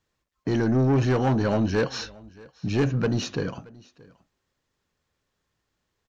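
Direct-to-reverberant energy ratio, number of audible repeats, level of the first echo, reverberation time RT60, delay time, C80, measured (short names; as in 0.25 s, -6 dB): none, 1, -23.5 dB, none, 0.626 s, none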